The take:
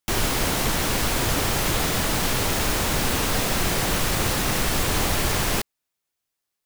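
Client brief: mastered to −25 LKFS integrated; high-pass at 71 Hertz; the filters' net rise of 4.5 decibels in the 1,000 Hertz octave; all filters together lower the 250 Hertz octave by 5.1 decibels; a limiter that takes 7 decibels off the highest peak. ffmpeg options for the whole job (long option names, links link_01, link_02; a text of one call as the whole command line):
ffmpeg -i in.wav -af "highpass=71,equalizer=frequency=250:width_type=o:gain=-7.5,equalizer=frequency=1000:width_type=o:gain=6,volume=0.5dB,alimiter=limit=-16.5dB:level=0:latency=1" out.wav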